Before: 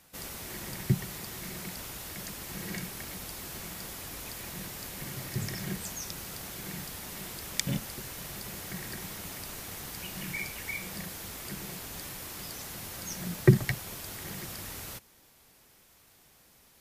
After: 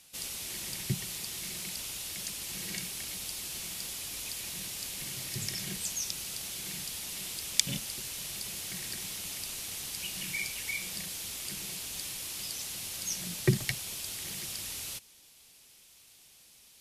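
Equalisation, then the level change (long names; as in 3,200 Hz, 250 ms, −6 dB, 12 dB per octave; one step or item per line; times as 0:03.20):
flat-topped bell 5,300 Hz +12 dB 2.6 octaves
−6.5 dB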